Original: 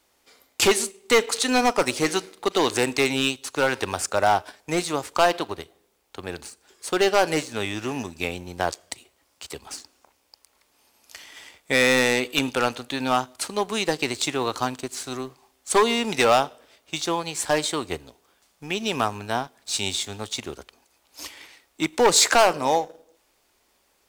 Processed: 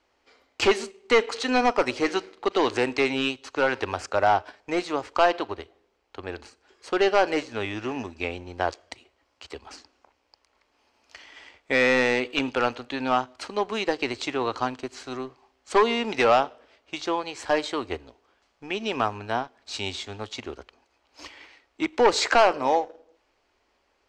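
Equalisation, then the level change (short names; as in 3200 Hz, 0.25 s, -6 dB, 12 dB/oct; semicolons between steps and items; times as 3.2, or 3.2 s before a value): air absorption 160 m; bell 160 Hz -14 dB 0.45 oct; notch 3600 Hz, Q 15; 0.0 dB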